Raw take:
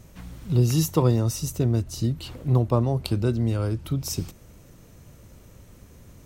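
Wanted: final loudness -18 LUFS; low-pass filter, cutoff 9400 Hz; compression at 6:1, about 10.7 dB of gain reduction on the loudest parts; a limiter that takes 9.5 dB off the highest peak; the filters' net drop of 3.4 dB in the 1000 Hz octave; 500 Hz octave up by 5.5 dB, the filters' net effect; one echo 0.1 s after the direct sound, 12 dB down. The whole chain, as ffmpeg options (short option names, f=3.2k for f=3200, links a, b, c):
-af "lowpass=9.4k,equalizer=f=500:t=o:g=8.5,equalizer=f=1k:t=o:g=-7.5,acompressor=threshold=-24dB:ratio=6,alimiter=limit=-23dB:level=0:latency=1,aecho=1:1:100:0.251,volume=15.5dB"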